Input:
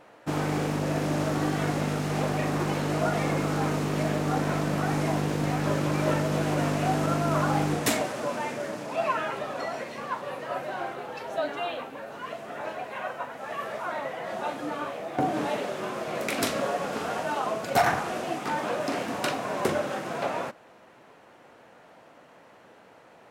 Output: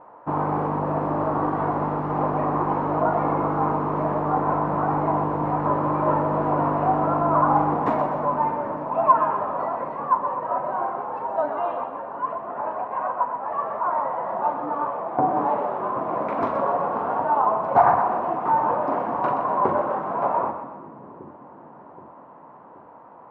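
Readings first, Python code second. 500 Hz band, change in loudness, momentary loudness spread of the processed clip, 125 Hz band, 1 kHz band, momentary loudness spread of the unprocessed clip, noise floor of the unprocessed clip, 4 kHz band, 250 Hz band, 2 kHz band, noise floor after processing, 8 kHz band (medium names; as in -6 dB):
+4.5 dB, +5.5 dB, 8 LU, -1.0 dB, +10.0 dB, 9 LU, -54 dBFS, under -15 dB, +1.5 dB, -4.0 dB, -46 dBFS, under -30 dB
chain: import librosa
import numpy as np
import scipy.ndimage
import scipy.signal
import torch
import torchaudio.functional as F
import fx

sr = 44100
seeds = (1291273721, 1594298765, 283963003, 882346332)

y = fx.lowpass_res(x, sr, hz=1000.0, q=4.9)
y = fx.echo_split(y, sr, split_hz=390.0, low_ms=776, high_ms=125, feedback_pct=52, wet_db=-8.5)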